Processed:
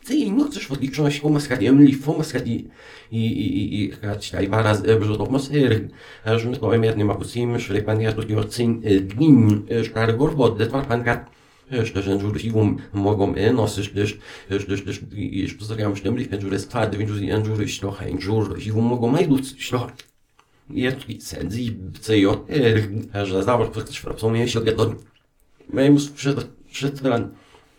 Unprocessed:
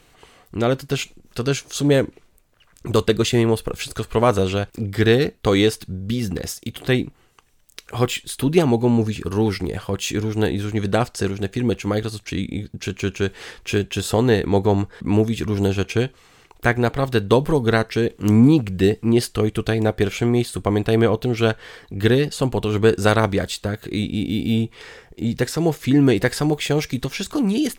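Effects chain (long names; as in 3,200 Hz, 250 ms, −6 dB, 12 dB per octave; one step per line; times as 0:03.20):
played backwards from end to start
high-shelf EQ 8,100 Hz −5 dB
convolution reverb RT60 0.30 s, pre-delay 4 ms, DRR 4.5 dB
level −3 dB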